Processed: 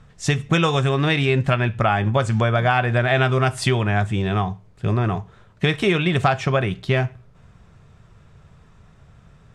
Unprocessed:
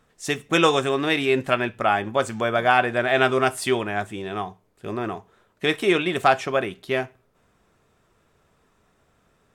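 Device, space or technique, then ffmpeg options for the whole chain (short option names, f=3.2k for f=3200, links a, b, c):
jukebox: -af "lowpass=7k,lowshelf=f=200:t=q:w=1.5:g=11,acompressor=threshold=-22dB:ratio=5,volume=7dB"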